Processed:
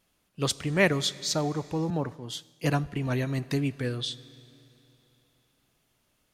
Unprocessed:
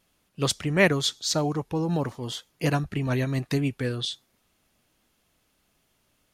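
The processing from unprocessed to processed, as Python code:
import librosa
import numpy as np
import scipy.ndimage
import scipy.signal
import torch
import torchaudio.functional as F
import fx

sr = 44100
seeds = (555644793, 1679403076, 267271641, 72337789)

y = fx.rev_schroeder(x, sr, rt60_s=3.1, comb_ms=25, drr_db=18.0)
y = fx.band_widen(y, sr, depth_pct=70, at=(1.9, 2.96))
y = F.gain(torch.from_numpy(y), -2.5).numpy()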